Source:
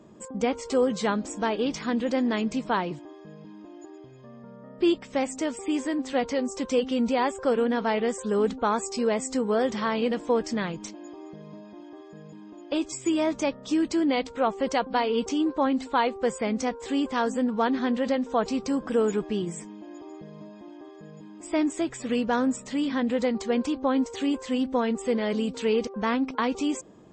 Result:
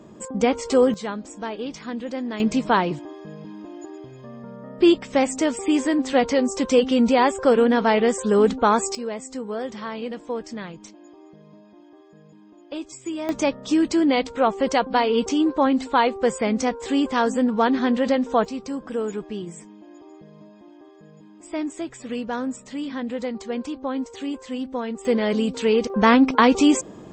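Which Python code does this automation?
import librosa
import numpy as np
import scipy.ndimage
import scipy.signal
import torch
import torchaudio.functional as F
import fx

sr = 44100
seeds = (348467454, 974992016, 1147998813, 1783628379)

y = fx.gain(x, sr, db=fx.steps((0.0, 6.0), (0.94, -4.0), (2.4, 7.0), (8.95, -5.0), (13.29, 5.0), (18.45, -3.0), (25.05, 5.0), (25.9, 11.0)))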